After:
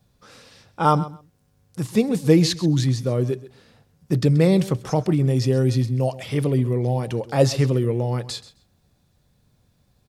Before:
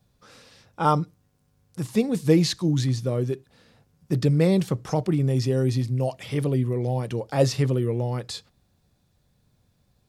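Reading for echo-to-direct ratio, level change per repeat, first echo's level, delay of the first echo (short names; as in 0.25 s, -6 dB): -17.0 dB, -16.0 dB, -17.0 dB, 0.131 s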